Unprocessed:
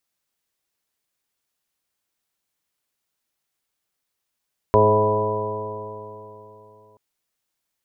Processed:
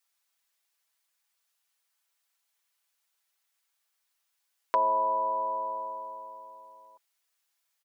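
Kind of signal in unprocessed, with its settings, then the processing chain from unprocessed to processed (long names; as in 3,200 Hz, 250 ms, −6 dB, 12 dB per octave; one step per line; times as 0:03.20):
stiff-string partials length 2.23 s, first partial 105 Hz, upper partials −5.5/−8/5/1/0/−11/−13.5/4 dB, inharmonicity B 0.0011, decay 3.30 s, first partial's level −20 dB
high-pass filter 820 Hz 12 dB per octave
comb filter 6 ms, depth 69%
downward compressor 2 to 1, threshold −28 dBFS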